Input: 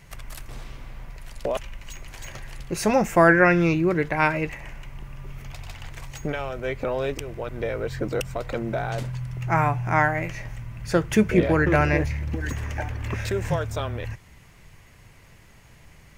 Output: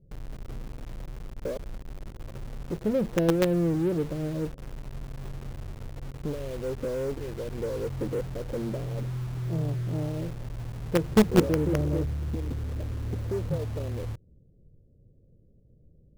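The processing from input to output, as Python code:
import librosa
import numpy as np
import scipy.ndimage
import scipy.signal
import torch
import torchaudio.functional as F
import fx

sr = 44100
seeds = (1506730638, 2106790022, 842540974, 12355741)

p1 = scipy.signal.sosfilt(scipy.signal.ellip(4, 1.0, 50, 530.0, 'lowpass', fs=sr, output='sos'), x)
p2 = fx.quant_companded(p1, sr, bits=2)
p3 = p1 + (p2 * 10.0 ** (-7.5 / 20.0))
y = p3 * 10.0 ** (-5.5 / 20.0)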